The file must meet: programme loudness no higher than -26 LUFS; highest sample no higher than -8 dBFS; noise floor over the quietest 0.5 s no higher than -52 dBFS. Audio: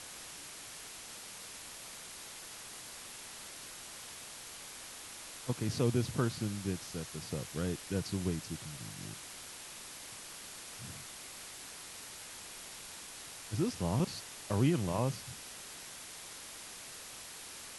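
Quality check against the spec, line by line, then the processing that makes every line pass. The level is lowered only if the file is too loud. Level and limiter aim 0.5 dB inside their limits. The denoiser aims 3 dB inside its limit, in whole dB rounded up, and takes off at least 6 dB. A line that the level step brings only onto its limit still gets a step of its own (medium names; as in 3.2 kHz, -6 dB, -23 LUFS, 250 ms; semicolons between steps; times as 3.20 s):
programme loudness -39.5 LUFS: pass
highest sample -18.0 dBFS: pass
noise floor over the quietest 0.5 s -48 dBFS: fail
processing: noise reduction 7 dB, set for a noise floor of -48 dBFS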